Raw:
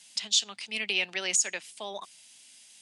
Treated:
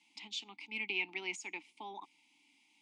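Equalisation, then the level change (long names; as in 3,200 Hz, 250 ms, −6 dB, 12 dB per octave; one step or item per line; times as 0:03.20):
formant filter u
+7.5 dB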